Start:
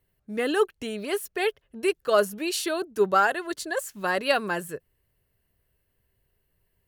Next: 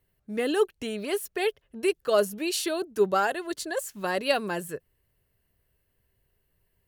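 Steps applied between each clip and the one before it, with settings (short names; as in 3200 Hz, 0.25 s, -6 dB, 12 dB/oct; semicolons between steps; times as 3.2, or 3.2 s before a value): dynamic EQ 1400 Hz, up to -6 dB, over -38 dBFS, Q 1.1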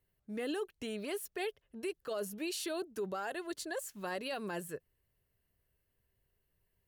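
limiter -22.5 dBFS, peak gain reduction 11.5 dB; gain -7 dB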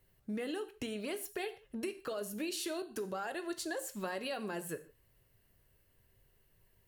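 compressor 6:1, threshold -46 dBFS, peak gain reduction 12.5 dB; non-linear reverb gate 0.18 s falling, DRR 9 dB; gain +9 dB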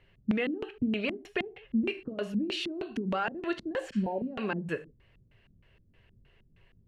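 LFO low-pass square 3.2 Hz 220–2700 Hz; spectral repair 3.95–4.24, 970–9300 Hz both; gain +7.5 dB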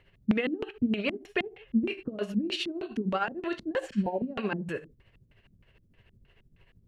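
tremolo 13 Hz, depth 61%; gain +4 dB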